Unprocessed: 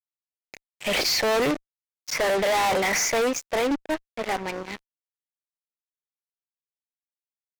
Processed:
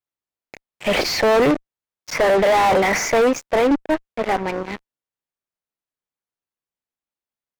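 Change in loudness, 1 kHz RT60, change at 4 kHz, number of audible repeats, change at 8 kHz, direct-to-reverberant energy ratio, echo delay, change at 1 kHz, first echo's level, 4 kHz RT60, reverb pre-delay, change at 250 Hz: +5.5 dB, none, +0.5 dB, none, -1.5 dB, none, none, +7.0 dB, none, none, none, +8.0 dB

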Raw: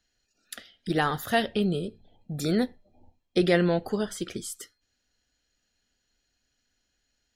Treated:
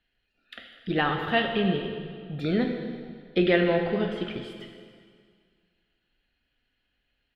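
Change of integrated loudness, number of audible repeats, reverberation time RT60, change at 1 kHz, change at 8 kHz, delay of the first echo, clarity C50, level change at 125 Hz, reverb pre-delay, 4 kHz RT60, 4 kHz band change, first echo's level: +0.5 dB, 1, 2.0 s, +0.5 dB, under -25 dB, 0.2 s, 5.0 dB, -0.5 dB, 5 ms, 1.9 s, +1.5 dB, -16.5 dB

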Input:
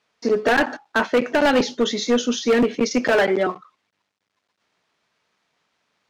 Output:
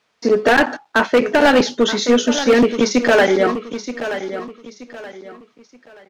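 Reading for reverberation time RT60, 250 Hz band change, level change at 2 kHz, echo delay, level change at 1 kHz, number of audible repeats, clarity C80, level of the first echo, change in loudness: none, +5.0 dB, +5.0 dB, 0.927 s, +5.0 dB, 3, none, -11.0 dB, +4.0 dB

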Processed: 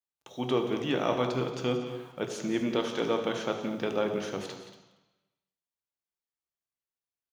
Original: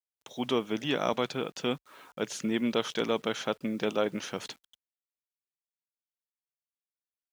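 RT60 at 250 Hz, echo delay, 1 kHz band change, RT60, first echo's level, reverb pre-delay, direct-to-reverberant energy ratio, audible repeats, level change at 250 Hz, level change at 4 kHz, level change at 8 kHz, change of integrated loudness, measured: 1.0 s, 0.177 s, +1.0 dB, 1.0 s, -12.5 dB, 3 ms, 3.5 dB, 2, +0.5 dB, -2.5 dB, -3.0 dB, +0.5 dB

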